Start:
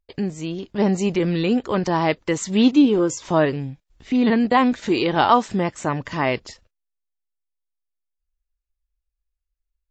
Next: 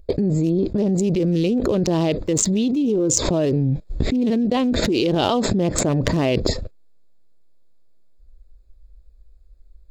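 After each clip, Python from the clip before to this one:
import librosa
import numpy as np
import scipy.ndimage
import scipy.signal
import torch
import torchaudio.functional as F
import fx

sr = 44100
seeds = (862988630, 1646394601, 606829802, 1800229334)

y = fx.wiener(x, sr, points=15)
y = fx.band_shelf(y, sr, hz=1300.0, db=-13.0, octaves=1.7)
y = fx.env_flatten(y, sr, amount_pct=100)
y = y * 10.0 ** (-8.5 / 20.0)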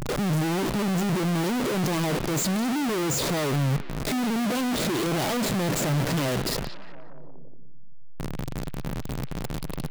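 y = np.sign(x) * np.sqrt(np.mean(np.square(x)))
y = fx.low_shelf_res(y, sr, hz=110.0, db=-6.0, q=3.0)
y = fx.echo_stepped(y, sr, ms=178, hz=3200.0, octaves=-0.7, feedback_pct=70, wet_db=-9.5)
y = y * 10.0 ** (-5.0 / 20.0)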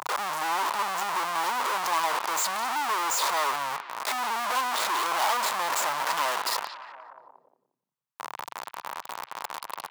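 y = fx.highpass_res(x, sr, hz=980.0, q=3.6)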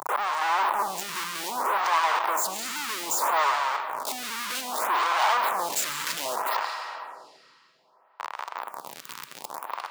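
y = fx.rev_freeverb(x, sr, rt60_s=2.8, hf_ratio=0.85, predelay_ms=95, drr_db=8.0)
y = fx.stagger_phaser(y, sr, hz=0.63)
y = y * 10.0 ** (3.5 / 20.0)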